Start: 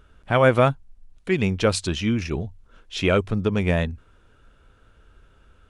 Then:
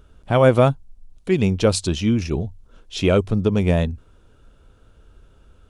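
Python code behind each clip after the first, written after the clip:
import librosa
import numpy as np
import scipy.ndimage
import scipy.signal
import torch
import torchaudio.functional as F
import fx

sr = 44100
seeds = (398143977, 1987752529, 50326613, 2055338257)

y = fx.peak_eq(x, sr, hz=1800.0, db=-8.5, octaves=1.5)
y = y * 10.0 ** (4.0 / 20.0)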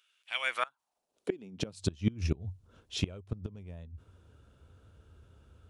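y = fx.filter_sweep_highpass(x, sr, from_hz=2500.0, to_hz=82.0, start_s=0.4, end_s=1.96, q=2.5)
y = fx.gate_flip(y, sr, shuts_db=-9.0, range_db=-25)
y = y * 10.0 ** (-7.0 / 20.0)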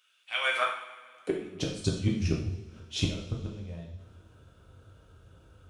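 y = fx.rev_double_slope(x, sr, seeds[0], early_s=0.61, late_s=2.2, knee_db=-17, drr_db=-3.0)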